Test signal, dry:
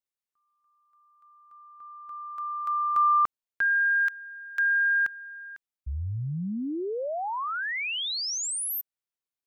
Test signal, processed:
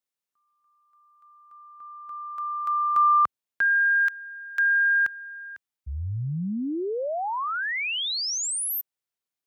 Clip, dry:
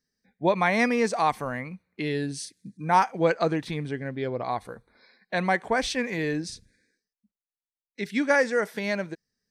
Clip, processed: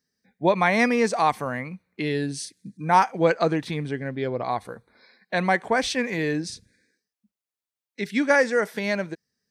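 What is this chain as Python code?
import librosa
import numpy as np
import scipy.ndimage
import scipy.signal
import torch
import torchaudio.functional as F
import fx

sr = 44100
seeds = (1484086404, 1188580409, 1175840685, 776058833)

y = scipy.signal.sosfilt(scipy.signal.butter(2, 70.0, 'highpass', fs=sr, output='sos'), x)
y = y * librosa.db_to_amplitude(2.5)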